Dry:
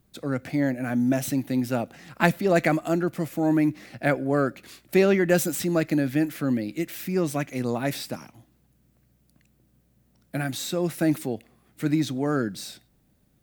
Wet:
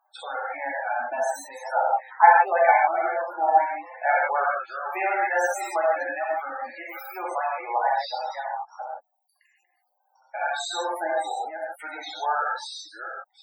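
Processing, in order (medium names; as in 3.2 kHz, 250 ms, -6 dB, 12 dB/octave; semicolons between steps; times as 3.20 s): chunks repeated in reverse 353 ms, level -7.5 dB; in parallel at +1 dB: compression, threshold -34 dBFS, peak gain reduction 18.5 dB; on the sum: reverb removal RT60 1.7 s; ladder high-pass 780 Hz, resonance 75%; gated-style reverb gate 190 ms flat, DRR -5.5 dB; loudest bins only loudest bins 32; trim +7 dB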